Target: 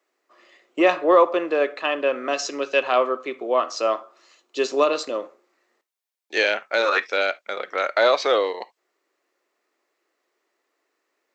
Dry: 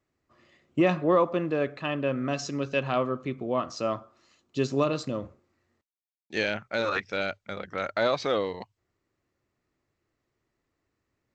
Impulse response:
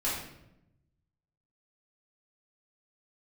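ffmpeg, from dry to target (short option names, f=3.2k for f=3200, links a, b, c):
-filter_complex "[0:a]highpass=f=380:w=0.5412,highpass=f=380:w=1.3066,asplit=2[a][b];[b]equalizer=f=2.3k:t=o:w=2.7:g=8.5[c];[1:a]atrim=start_sample=2205,atrim=end_sample=3528[d];[c][d]afir=irnorm=-1:irlink=0,volume=-27.5dB[e];[a][e]amix=inputs=2:normalize=0,volume=7.5dB"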